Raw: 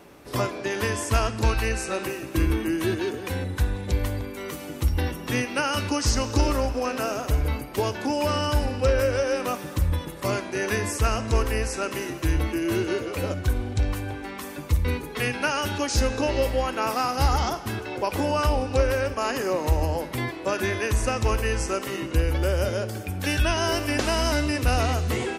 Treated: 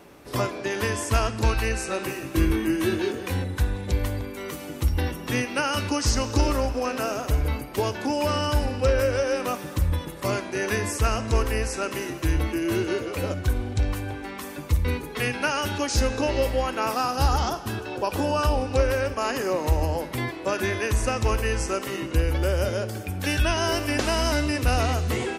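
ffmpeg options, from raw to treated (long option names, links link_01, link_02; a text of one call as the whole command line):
ffmpeg -i in.wav -filter_complex "[0:a]asettb=1/sr,asplit=3[link_01][link_02][link_03];[link_01]atrim=end=2.064[link_04];[link_02]atrim=start=2.06:end=3.42,asetpts=PTS-STARTPTS,afade=type=in:duration=0.004:curve=qsin,afade=type=out:start_time=1.356:duration=0.004:curve=qsin,asplit=2[link_05][link_06];[link_06]adelay=22,volume=-5dB[link_07];[link_05][link_07]amix=inputs=2:normalize=0,atrim=end_sample=59976[link_08];[link_03]atrim=start=3.416[link_09];[link_04][link_08]acrossfade=duration=0.004:curve1=hsin:curve2=qsin[link_10];[link_10][link_09]acrossfade=duration=0.004:curve1=qsin:curve2=hsin,asettb=1/sr,asplit=3[link_11][link_12][link_13];[link_11]atrim=end=16.954[link_14];[link_12]atrim=start=16.95:end=18.57,asetpts=PTS-STARTPTS,afade=type=in:duration=0.004:curve=qsin,afade=type=out:start_time=1.616:duration=0.004:curve=qsin,bandreject=frequency=2100:width=5.7[link_15];[link_13]atrim=start=18.566[link_16];[link_14][link_15]acrossfade=duration=0.004:curve1=hsin:curve2=qsin[link_17];[link_17][link_16]acrossfade=duration=0.004:curve1=qsin:curve2=hsin" out.wav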